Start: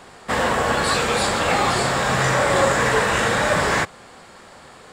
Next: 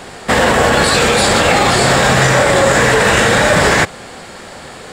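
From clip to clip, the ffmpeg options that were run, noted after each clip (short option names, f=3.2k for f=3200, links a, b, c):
-af "equalizer=f=1.1k:w=2.1:g=-5,alimiter=level_in=14dB:limit=-1dB:release=50:level=0:latency=1,volume=-1dB"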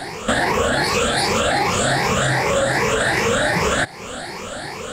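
-af "afftfilt=real='re*pow(10,14/40*sin(2*PI*(0.8*log(max(b,1)*sr/1024/100)/log(2)-(2.6)*(pts-256)/sr)))':imag='im*pow(10,14/40*sin(2*PI*(0.8*log(max(b,1)*sr/1024/100)/log(2)-(2.6)*(pts-256)/sr)))':win_size=1024:overlap=0.75,acompressor=threshold=-19dB:ratio=3"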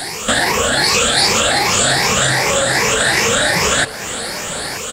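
-filter_complex "[0:a]acrossover=split=7300[a][b];[b]acompressor=threshold=-44dB:ratio=4:attack=1:release=60[c];[a][c]amix=inputs=2:normalize=0,crystalizer=i=4.5:c=0,asplit=2[d][e];[e]adelay=932.9,volume=-12dB,highshelf=f=4k:g=-21[f];[d][f]amix=inputs=2:normalize=0"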